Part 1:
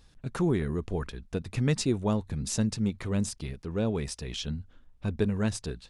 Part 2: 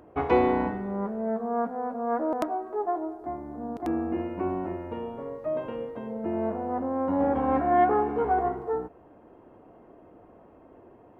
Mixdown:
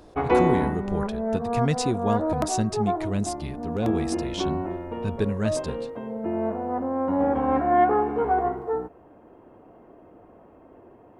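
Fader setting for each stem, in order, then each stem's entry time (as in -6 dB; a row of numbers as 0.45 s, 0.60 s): +1.5 dB, +2.0 dB; 0.00 s, 0.00 s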